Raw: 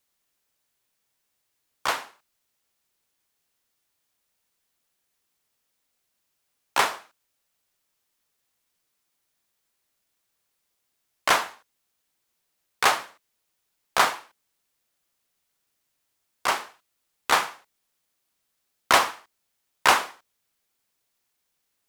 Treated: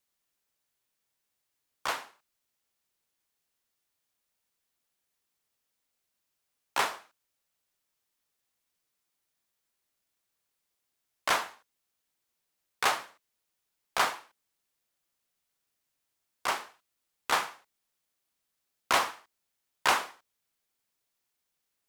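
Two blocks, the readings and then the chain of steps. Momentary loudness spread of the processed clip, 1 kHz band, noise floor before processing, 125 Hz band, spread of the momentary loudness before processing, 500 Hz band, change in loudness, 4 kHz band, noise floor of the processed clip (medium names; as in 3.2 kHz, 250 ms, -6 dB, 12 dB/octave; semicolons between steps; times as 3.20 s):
14 LU, -6.5 dB, -77 dBFS, -7.0 dB, 15 LU, -6.5 dB, -6.5 dB, -6.5 dB, -82 dBFS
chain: transformer saturation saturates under 1.9 kHz; trim -5.5 dB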